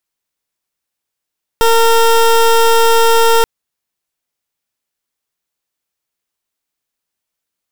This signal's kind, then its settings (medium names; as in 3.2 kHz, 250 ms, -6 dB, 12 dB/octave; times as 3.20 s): pulse 458 Hz, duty 21% -9 dBFS 1.83 s